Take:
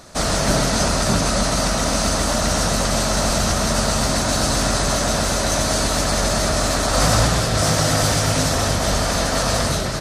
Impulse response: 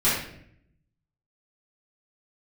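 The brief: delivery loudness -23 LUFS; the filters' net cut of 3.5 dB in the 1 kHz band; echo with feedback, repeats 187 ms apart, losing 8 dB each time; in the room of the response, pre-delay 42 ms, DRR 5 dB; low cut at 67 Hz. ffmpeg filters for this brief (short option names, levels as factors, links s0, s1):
-filter_complex "[0:a]highpass=67,equalizer=f=1000:t=o:g=-5,aecho=1:1:187|374|561|748|935:0.398|0.159|0.0637|0.0255|0.0102,asplit=2[s0][s1];[1:a]atrim=start_sample=2205,adelay=42[s2];[s1][s2]afir=irnorm=-1:irlink=0,volume=0.1[s3];[s0][s3]amix=inputs=2:normalize=0,volume=0.531"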